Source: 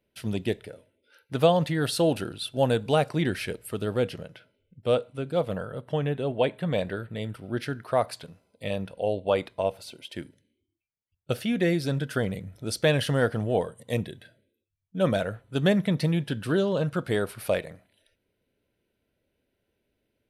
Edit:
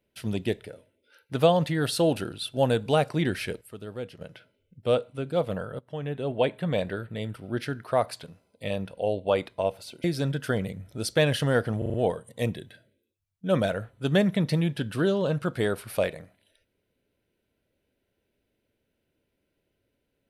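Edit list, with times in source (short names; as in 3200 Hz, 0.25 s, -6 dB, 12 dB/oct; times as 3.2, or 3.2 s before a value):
3.61–4.21 gain -10 dB
5.79–6.36 fade in, from -15.5 dB
10.04–11.71 cut
13.45 stutter 0.04 s, 5 plays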